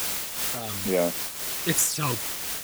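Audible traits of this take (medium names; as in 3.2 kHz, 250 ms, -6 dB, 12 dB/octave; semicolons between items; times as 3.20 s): phasing stages 12, 2.3 Hz, lowest notch 540–4500 Hz; a quantiser's noise floor 6-bit, dither triangular; random flutter of the level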